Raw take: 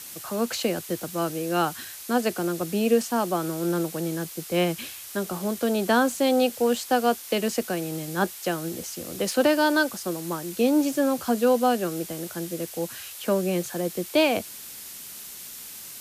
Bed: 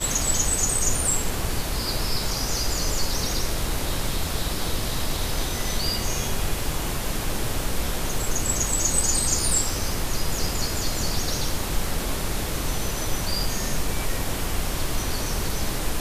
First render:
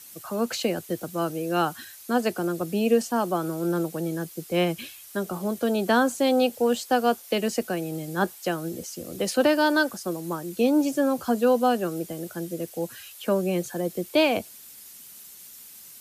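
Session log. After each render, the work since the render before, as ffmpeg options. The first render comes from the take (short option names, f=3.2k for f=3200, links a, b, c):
-af "afftdn=nr=9:nf=-41"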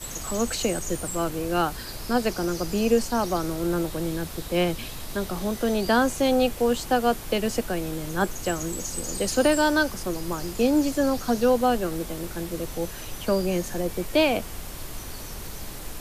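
-filter_complex "[1:a]volume=-11dB[a];[0:a][a]amix=inputs=2:normalize=0"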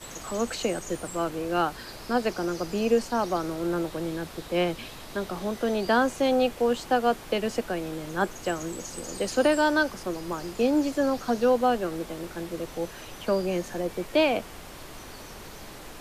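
-af "lowpass=f=3.3k:p=1,lowshelf=f=150:g=-11.5"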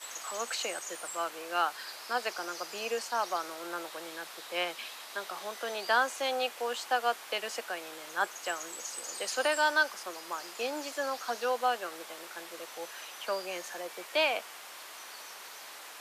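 -af "highpass=890"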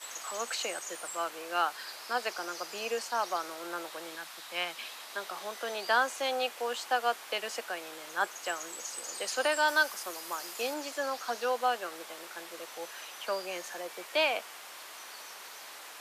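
-filter_complex "[0:a]asettb=1/sr,asplit=3[a][b][c];[a]atrim=end=4.154[d];[b]atrim=start=4.15:end=4.76,asetpts=PTS-STARTPTS,afade=t=in:d=0.004:c=qsin,afade=t=out:st=0.606:d=0.004:c=qsin,equalizer=f=440:t=o:w=0.77:g=-10.5[e];[c]atrim=start=4.756[f];[d][e]acrossfade=d=0.004:c1=hsin:c2=qsin[g];[g][f]acrossfade=d=0.004:c1=qsin:c2=hsin,asettb=1/sr,asplit=3[h][i][j];[h]atrim=end=9.684[k];[i]atrim=start=9.68:end=10.74,asetpts=PTS-STARTPTS,afade=t=in:d=0.004:c=qsin,afade=t=out:st=1.056:d=0.004:c=qsin,highshelf=f=8.5k:g=10.5[l];[j]atrim=start=10.736[m];[k][l]acrossfade=d=0.004:c1=hsin:c2=qsin[n];[n][m]acrossfade=d=0.004:c1=qsin:c2=hsin"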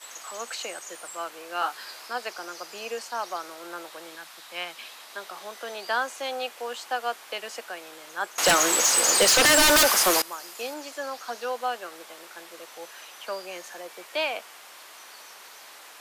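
-filter_complex "[0:a]asettb=1/sr,asplit=3[a][b][c];[a]atrim=end=1.604[d];[b]atrim=start=1.6:end=2.08,asetpts=PTS-STARTPTS,afade=t=in:d=0.004:c=qsin,afade=t=out:st=0.476:d=0.004:c=qsin,asplit=2[e][f];[f]adelay=16,volume=-2.5dB[g];[e][g]amix=inputs=2:normalize=0,atrim=end_sample=21168[h];[c]atrim=start=2.076[i];[d][h]acrossfade=d=0.004:c1=hsin:c2=qsin[j];[j][i]acrossfade=d=0.004:c1=qsin:c2=hsin,asettb=1/sr,asplit=3[k][l][m];[k]atrim=end=8.384[n];[l]atrim=start=8.38:end=10.22,asetpts=PTS-STARTPTS,afade=t=in:d=0.004:c=qsin,afade=t=out:st=1.836:d=0.004:c=qsin,aeval=exprs='0.2*sin(PI/2*7.08*val(0)/0.2)':c=same[o];[m]atrim=start=10.216[p];[n][o]acrossfade=d=0.004:c1=hsin:c2=qsin[q];[q][p]acrossfade=d=0.004:c1=qsin:c2=hsin"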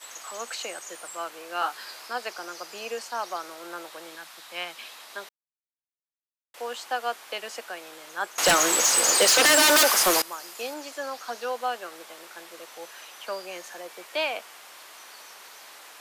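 -filter_complex "[0:a]asettb=1/sr,asplit=3[a][b][c];[a]atrim=end=9.104[d];[b]atrim=start=9.1:end=9.99,asetpts=PTS-STARTPTS,afade=t=in:d=0.004:c=qsin,afade=t=out:st=0.886:d=0.004:c=qsin,highpass=240[e];[c]atrim=start=9.986[f];[d][e]acrossfade=d=0.004:c1=hsin:c2=qsin[g];[g][f]acrossfade=d=0.004:c1=qsin:c2=hsin,asplit=3[h][i][j];[h]atrim=end=5.29,asetpts=PTS-STARTPTS,afade=t=out:st=5.286:d=0.004:c=hsin[k];[i]atrim=start=5.29:end=6.54,asetpts=PTS-STARTPTS,volume=0[l];[j]atrim=start=6.54,asetpts=PTS-STARTPTS,afade=t=in:d=0.004:c=hsin[m];[k][l][m]concat=n=3:v=0:a=1"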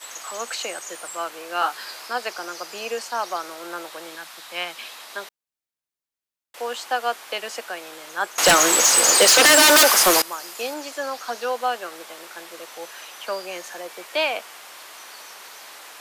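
-af "volume=5dB"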